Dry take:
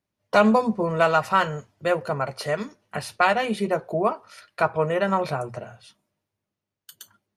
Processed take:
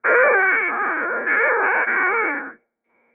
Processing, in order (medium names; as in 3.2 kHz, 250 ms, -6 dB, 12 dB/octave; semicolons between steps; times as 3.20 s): every event in the spectrogram widened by 480 ms; rippled Chebyshev low-pass 1 kHz, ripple 6 dB; speed mistake 33 rpm record played at 78 rpm